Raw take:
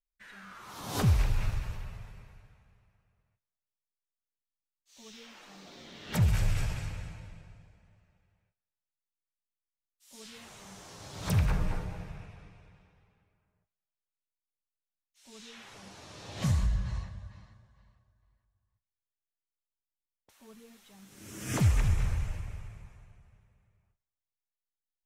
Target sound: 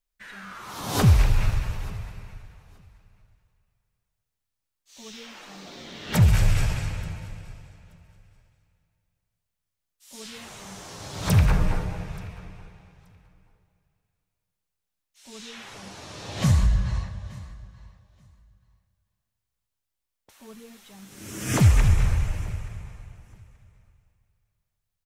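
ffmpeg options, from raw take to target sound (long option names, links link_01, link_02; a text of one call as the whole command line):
ffmpeg -i in.wav -af "aecho=1:1:879|1758:0.0708|0.0127,volume=8dB" out.wav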